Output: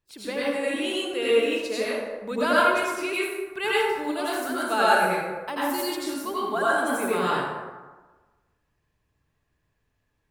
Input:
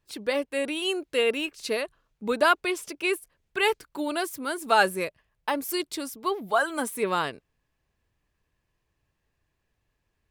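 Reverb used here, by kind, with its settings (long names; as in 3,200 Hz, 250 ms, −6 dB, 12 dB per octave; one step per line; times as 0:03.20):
dense smooth reverb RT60 1.3 s, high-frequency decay 0.5×, pre-delay 75 ms, DRR −8 dB
level −6.5 dB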